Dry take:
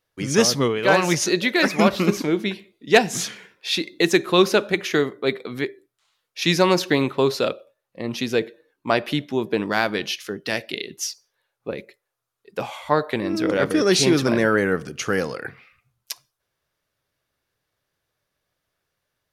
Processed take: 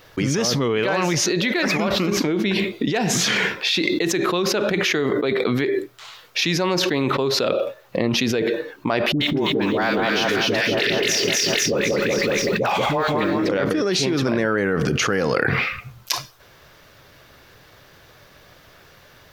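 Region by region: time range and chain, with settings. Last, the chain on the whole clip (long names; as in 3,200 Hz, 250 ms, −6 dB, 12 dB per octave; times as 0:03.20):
0:09.12–0:13.49: mu-law and A-law mismatch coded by mu + all-pass dispersion highs, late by 88 ms, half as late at 770 Hz + echo with a time of its own for lows and highs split 1,500 Hz, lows 188 ms, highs 253 ms, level −4 dB
whole clip: parametric band 9,900 Hz −11.5 dB 0.87 octaves; envelope flattener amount 100%; level −10.5 dB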